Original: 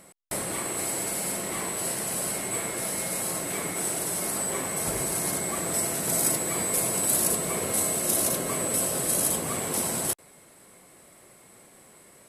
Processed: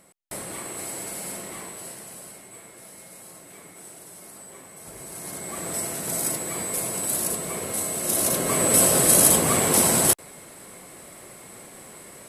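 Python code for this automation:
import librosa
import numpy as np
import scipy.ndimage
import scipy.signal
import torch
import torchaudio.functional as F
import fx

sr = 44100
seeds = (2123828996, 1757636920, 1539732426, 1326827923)

y = fx.gain(x, sr, db=fx.line((1.37, -4.0), (2.5, -15.0), (4.79, -15.0), (5.66, -2.0), (7.89, -2.0), (8.8, 9.0)))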